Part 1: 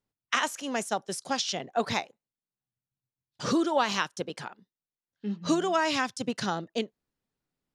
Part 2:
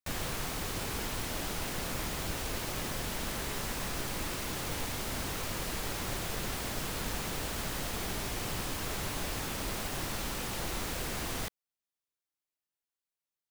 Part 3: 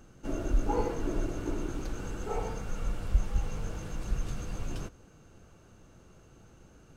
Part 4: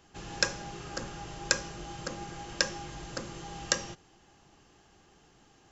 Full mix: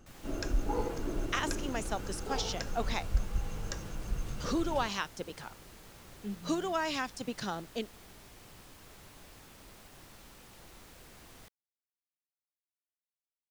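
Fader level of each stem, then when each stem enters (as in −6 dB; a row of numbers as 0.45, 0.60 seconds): −6.5, −18.0, −3.5, −14.5 decibels; 1.00, 0.00, 0.00, 0.00 seconds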